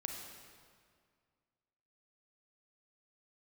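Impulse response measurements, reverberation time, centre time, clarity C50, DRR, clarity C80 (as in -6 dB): 2.0 s, 67 ms, 3.0 dB, 2.0 dB, 4.5 dB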